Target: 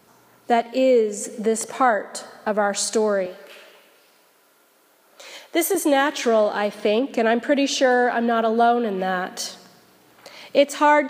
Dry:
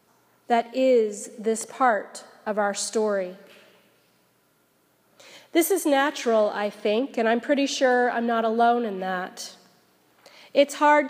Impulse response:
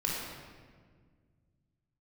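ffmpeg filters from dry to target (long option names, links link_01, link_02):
-filter_complex "[0:a]asplit=2[link_01][link_02];[link_02]acompressor=threshold=-30dB:ratio=6,volume=3dB[link_03];[link_01][link_03]amix=inputs=2:normalize=0,asettb=1/sr,asplit=3[link_04][link_05][link_06];[link_04]atrim=end=3.264[link_07];[link_05]atrim=start=3.26:end=5.75,asetpts=PTS-STARTPTS,afade=type=in:duration=0.004:curve=qsin,afade=type=out:start_time=2.486:duration=0.004:curve=qsin,highpass=380[link_08];[link_06]atrim=start=5.746[link_09];[link_07][link_08]acrossfade=duration=0.004:curve1=hsin:curve2=qsin[link_10];[link_10][link_09]acrossfade=duration=0.004:curve1=qsin:curve2=hsin"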